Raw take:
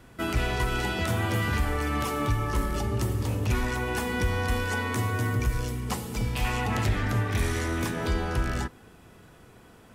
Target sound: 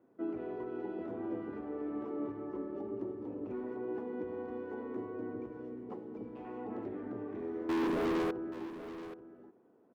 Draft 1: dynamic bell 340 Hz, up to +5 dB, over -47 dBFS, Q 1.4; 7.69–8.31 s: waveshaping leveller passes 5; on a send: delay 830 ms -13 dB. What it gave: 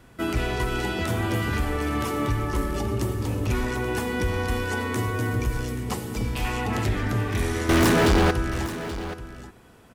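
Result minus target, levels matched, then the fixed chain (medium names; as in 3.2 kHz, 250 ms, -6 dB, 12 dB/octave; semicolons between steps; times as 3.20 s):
500 Hz band -3.5 dB
dynamic bell 340 Hz, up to +5 dB, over -47 dBFS, Q 1.4; ladder band-pass 400 Hz, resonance 35%; 7.69–8.31 s: waveshaping leveller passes 5; on a send: delay 830 ms -13 dB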